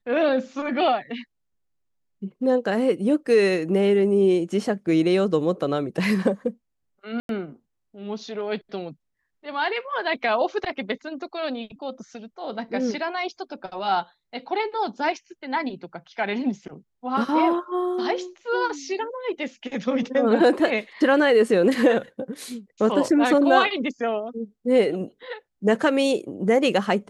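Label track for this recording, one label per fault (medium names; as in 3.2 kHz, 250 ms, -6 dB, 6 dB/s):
7.200000	7.290000	dropout 92 ms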